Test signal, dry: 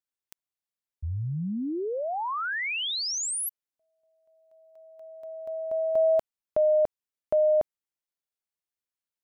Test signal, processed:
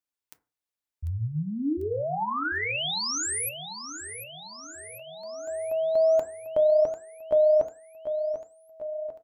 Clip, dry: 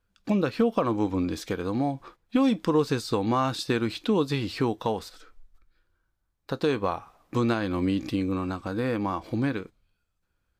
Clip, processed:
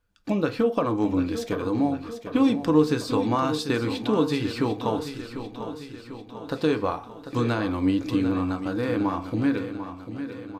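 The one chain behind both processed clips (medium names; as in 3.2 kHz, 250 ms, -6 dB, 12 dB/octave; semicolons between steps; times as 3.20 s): on a send: feedback delay 745 ms, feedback 58%, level -10.5 dB; on the sum: FDN reverb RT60 0.34 s, low-frequency decay 1×, high-frequency decay 0.4×, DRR 7.5 dB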